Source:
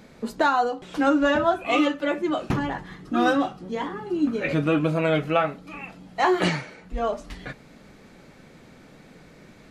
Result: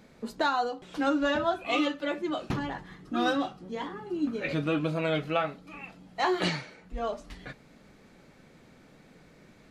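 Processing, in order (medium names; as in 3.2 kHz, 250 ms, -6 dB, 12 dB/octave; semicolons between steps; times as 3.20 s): dynamic bell 4.1 kHz, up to +7 dB, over -47 dBFS, Q 1.6; trim -6.5 dB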